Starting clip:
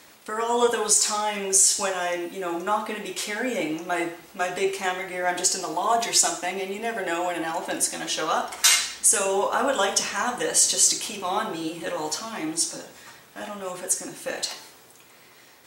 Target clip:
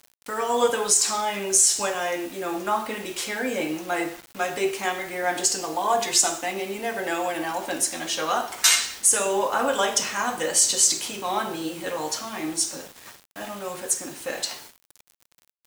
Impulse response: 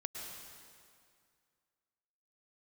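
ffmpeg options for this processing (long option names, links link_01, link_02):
-af "acrusher=bits=6:mix=0:aa=0.000001"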